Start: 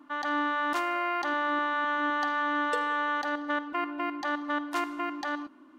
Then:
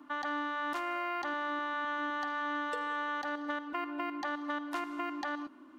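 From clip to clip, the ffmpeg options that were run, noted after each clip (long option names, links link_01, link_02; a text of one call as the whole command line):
ffmpeg -i in.wav -filter_complex "[0:a]acrossover=split=180|4000[link_01][link_02][link_03];[link_01]acompressor=threshold=-58dB:ratio=4[link_04];[link_02]acompressor=threshold=-34dB:ratio=4[link_05];[link_03]acompressor=threshold=-56dB:ratio=4[link_06];[link_04][link_05][link_06]amix=inputs=3:normalize=0" out.wav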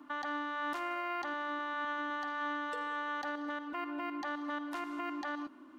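ffmpeg -i in.wav -af "alimiter=level_in=6.5dB:limit=-24dB:level=0:latency=1:release=31,volume=-6.5dB" out.wav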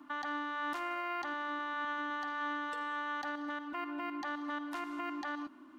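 ffmpeg -i in.wav -af "equalizer=frequency=490:width_type=o:width=0.37:gain=-10" out.wav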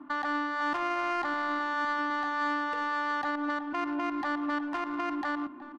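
ffmpeg -i in.wav -filter_complex "[0:a]asplit=2[link_01][link_02];[link_02]adelay=370,highpass=300,lowpass=3400,asoftclip=type=hard:threshold=-38dB,volume=-12dB[link_03];[link_01][link_03]amix=inputs=2:normalize=0,adynamicsmooth=sensitivity=5.5:basefreq=1500,volume=8dB" out.wav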